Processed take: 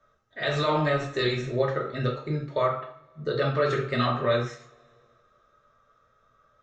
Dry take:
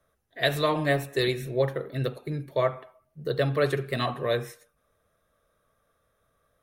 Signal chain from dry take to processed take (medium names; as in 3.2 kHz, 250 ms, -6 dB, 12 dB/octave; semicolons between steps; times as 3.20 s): steep low-pass 7.3 kHz 72 dB/octave; peaking EQ 1.3 kHz +13 dB 0.22 oct; peak limiter -18 dBFS, peak gain reduction 9.5 dB; two-slope reverb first 0.37 s, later 2.3 s, from -27 dB, DRR -1 dB